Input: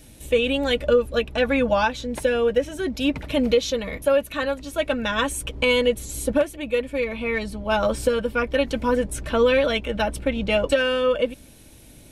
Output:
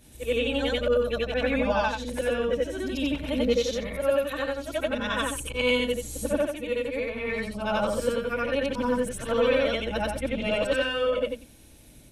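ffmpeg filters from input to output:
-af "afftfilt=real='re':imag='-im':win_size=8192:overlap=0.75"

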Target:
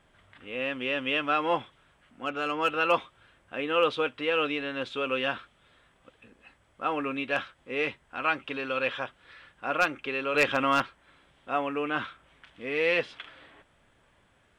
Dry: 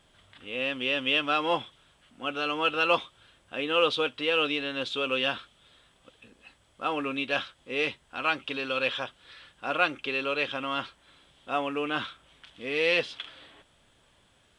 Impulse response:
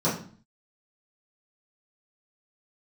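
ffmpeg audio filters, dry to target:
-filter_complex "[0:a]highshelf=f=2.7k:t=q:w=1.5:g=-6.5,asettb=1/sr,asplit=3[a][b][c];[a]atrim=end=10.344[d];[b]atrim=start=10.34:end=10.82,asetpts=PTS-STARTPTS,afade=t=in:d=0.004:c=qsin,afade=t=out:st=0.476:d=0.004:c=qsin,acontrast=84[e];[c]atrim=start=10.816[f];[d][e]acrossfade=d=0.004:c1=hsin:c2=qsin[g];[g][f]acrossfade=d=0.004:c1=qsin:c2=hsin,aeval=exprs='0.237*(abs(mod(val(0)/0.237+3,4)-2)-1)':c=same,asettb=1/sr,asplit=3[h][i][j];[h]atrim=end=2.254[k];[i]atrim=start=2.25:end=2.69,asetpts=PTS-STARTPTS,afade=t=in:d=0.004:c=qsin,afade=t=out:st=0.436:d=0.004:c=qsin,adynamicsmooth=sensitivity=6:basefreq=5.1k[l];[j]atrim=start=2.686[m];[k][l]acrossfade=d=0.004:c1=hsin:c2=qsin[n];[n][m]acrossfade=d=0.004:c1=qsin:c2=hsin"

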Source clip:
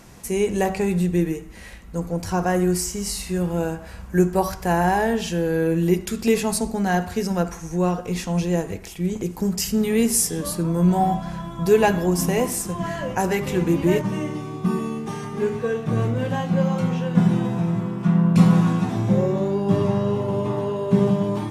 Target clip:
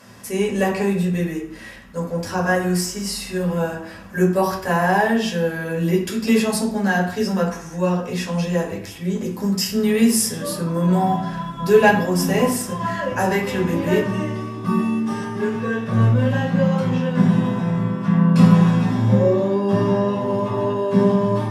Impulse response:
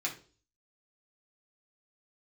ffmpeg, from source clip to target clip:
-filter_complex "[0:a]lowshelf=f=98:g=-5.5[a];[1:a]atrim=start_sample=2205,asetrate=33075,aresample=44100[b];[a][b]afir=irnorm=-1:irlink=0,volume=-2dB"

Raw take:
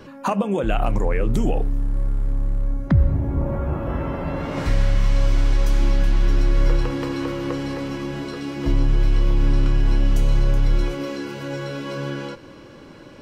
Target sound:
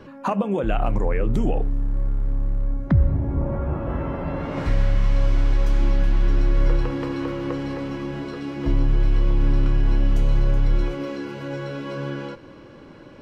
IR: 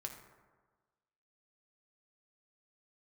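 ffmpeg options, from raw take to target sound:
-af "highshelf=f=4.6k:g=-11.5,volume=-1dB"

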